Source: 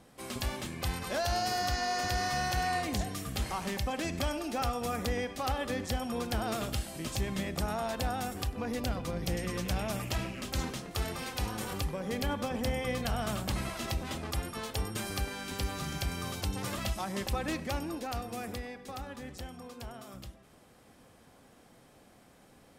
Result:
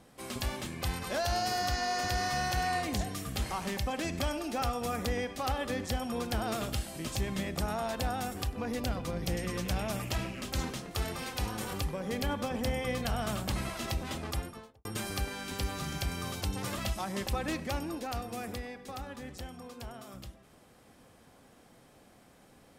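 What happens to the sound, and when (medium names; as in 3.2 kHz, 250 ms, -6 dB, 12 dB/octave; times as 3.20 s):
14.28–14.85 s: studio fade out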